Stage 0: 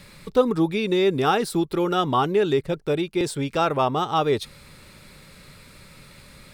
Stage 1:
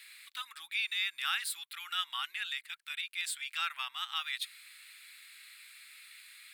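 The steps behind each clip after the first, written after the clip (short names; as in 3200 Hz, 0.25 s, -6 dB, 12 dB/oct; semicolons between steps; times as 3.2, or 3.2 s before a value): inverse Chebyshev high-pass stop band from 530 Hz, stop band 60 dB; bell 5700 Hz -11 dB 0.57 oct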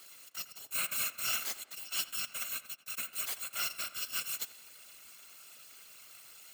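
FFT order left unsorted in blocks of 128 samples; whisperiser; tape echo 86 ms, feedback 51%, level -12.5 dB, low-pass 2400 Hz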